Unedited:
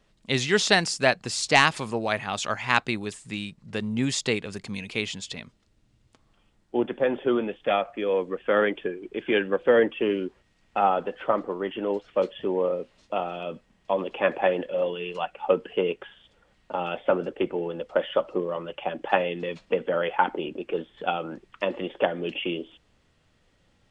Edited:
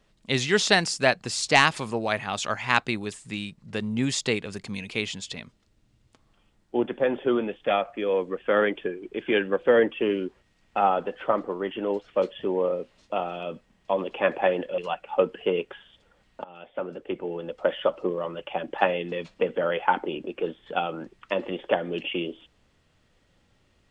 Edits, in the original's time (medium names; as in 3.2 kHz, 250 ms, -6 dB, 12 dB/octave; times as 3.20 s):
14.78–15.09 s: delete
16.75–17.98 s: fade in, from -22.5 dB